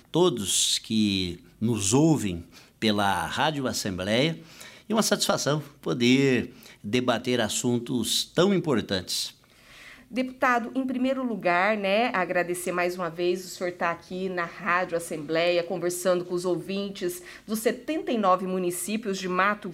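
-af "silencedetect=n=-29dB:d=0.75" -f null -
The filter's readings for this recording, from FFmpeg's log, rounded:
silence_start: 9.27
silence_end: 10.15 | silence_duration: 0.87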